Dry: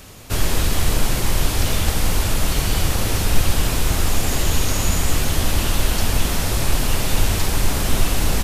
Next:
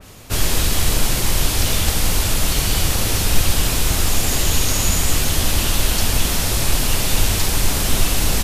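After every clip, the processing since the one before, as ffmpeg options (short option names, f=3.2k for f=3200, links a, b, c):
-af "adynamicequalizer=threshold=0.00891:dfrequency=2400:dqfactor=0.7:tfrequency=2400:tqfactor=0.7:attack=5:release=100:ratio=0.375:range=2.5:mode=boostabove:tftype=highshelf"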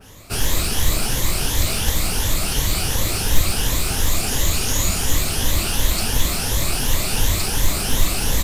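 -af "afftfilt=real='re*pow(10,8/40*sin(2*PI*(1.1*log(max(b,1)*sr/1024/100)/log(2)-(2.8)*(pts-256)/sr)))':imag='im*pow(10,8/40*sin(2*PI*(1.1*log(max(b,1)*sr/1024/100)/log(2)-(2.8)*(pts-256)/sr)))':win_size=1024:overlap=0.75,acrusher=bits=7:mode=log:mix=0:aa=0.000001,volume=-3dB"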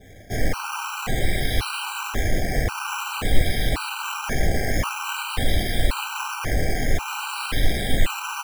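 -af "acrusher=samples=9:mix=1:aa=0.000001:lfo=1:lforange=5.4:lforate=0.49,afftfilt=real='re*gt(sin(2*PI*0.93*pts/sr)*(1-2*mod(floor(b*sr/1024/780),2)),0)':imag='im*gt(sin(2*PI*0.93*pts/sr)*(1-2*mod(floor(b*sr/1024/780),2)),0)':win_size=1024:overlap=0.75,volume=-1dB"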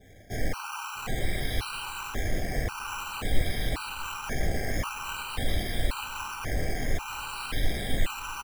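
-filter_complex "[0:a]asplit=2[a][b];[b]adelay=649,lowpass=f=1.9k:p=1,volume=-21dB,asplit=2[c][d];[d]adelay=649,lowpass=f=1.9k:p=1,volume=0.39,asplit=2[e][f];[f]adelay=649,lowpass=f=1.9k:p=1,volume=0.39[g];[a][c][e][g]amix=inputs=4:normalize=0,volume=-7dB"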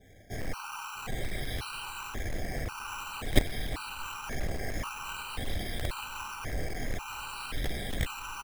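-af "aeval=exprs='0.376*(cos(1*acos(clip(val(0)/0.376,-1,1)))-cos(1*PI/2))+0.168*(cos(3*acos(clip(val(0)/0.376,-1,1)))-cos(3*PI/2))+0.00596*(cos(6*acos(clip(val(0)/0.376,-1,1)))-cos(6*PI/2))':c=same,volume=6dB"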